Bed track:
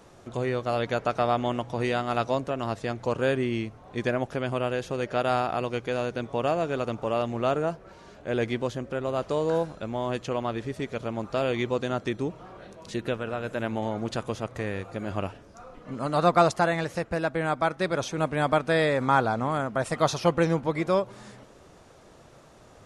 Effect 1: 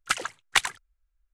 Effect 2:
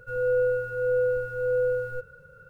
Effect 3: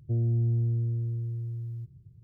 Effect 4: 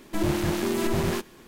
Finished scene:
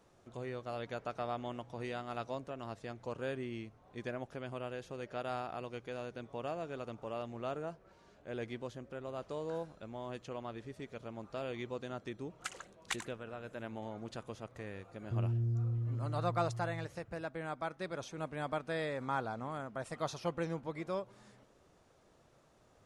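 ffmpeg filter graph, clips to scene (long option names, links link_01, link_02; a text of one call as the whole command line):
ffmpeg -i bed.wav -i cue0.wav -i cue1.wav -i cue2.wav -filter_complex "[0:a]volume=-14dB[link_01];[1:a]equalizer=frequency=6900:width_type=o:width=0.34:gain=5,atrim=end=1.33,asetpts=PTS-STARTPTS,volume=-17dB,afade=type=in:duration=0.004:curve=hsin,afade=type=out:start_time=1.326:duration=0.004:curve=hsin,adelay=12350[link_02];[3:a]atrim=end=2.23,asetpts=PTS-STARTPTS,volume=-7.5dB,afade=type=in:duration=0.004:curve=hsin,afade=type=out:start_time=2.226:duration=0.004:curve=hsin,adelay=15020[link_03];[link_01][link_02][link_03]amix=inputs=3:normalize=0" out.wav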